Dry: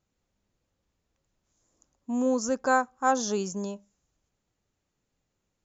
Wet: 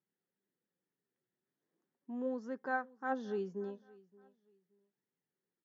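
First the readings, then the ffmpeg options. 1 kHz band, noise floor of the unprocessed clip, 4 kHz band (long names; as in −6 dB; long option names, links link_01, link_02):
−13.5 dB, −81 dBFS, −22.0 dB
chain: -filter_complex "[0:a]flanger=delay=0.9:depth=7.3:regen=64:speed=0.39:shape=sinusoidal,highpass=frequency=150:width=0.5412,highpass=frequency=150:width=1.3066,equalizer=frequency=180:width_type=q:width=4:gain=4,equalizer=frequency=390:width_type=q:width=4:gain=9,equalizer=frequency=630:width_type=q:width=4:gain=-6,equalizer=frequency=1100:width_type=q:width=4:gain=-5,equalizer=frequency=1800:width_type=q:width=4:gain=7,equalizer=frequency=2500:width_type=q:width=4:gain=-8,lowpass=frequency=3300:width=0.5412,lowpass=frequency=3300:width=1.3066,asplit=2[link_01][link_02];[link_02]aecho=0:1:573|1146:0.0708|0.0184[link_03];[link_01][link_03]amix=inputs=2:normalize=0,volume=-8dB"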